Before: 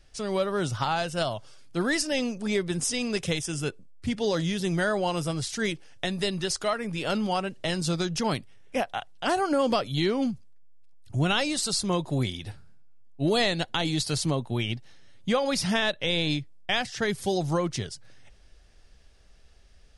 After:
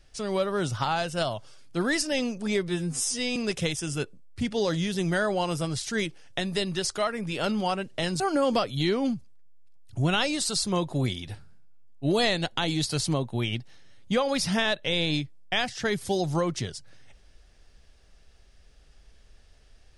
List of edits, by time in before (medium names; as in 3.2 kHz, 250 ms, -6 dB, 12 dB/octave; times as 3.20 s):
2.68–3.02 s: stretch 2×
7.86–9.37 s: delete